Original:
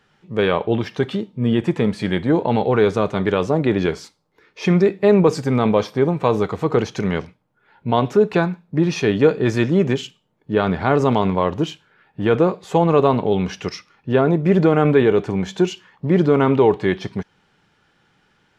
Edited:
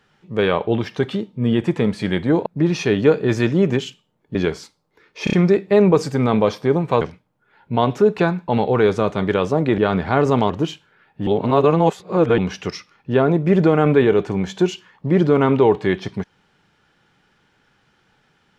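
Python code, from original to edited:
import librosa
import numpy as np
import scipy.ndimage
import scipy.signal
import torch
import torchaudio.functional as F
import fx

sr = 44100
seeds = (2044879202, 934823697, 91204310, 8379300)

y = fx.edit(x, sr, fx.swap(start_s=2.46, length_s=1.3, other_s=8.63, other_length_s=1.89),
    fx.stutter(start_s=4.65, slice_s=0.03, count=4),
    fx.cut(start_s=6.33, length_s=0.83),
    fx.cut(start_s=11.24, length_s=0.25),
    fx.reverse_span(start_s=12.26, length_s=1.11), tone=tone)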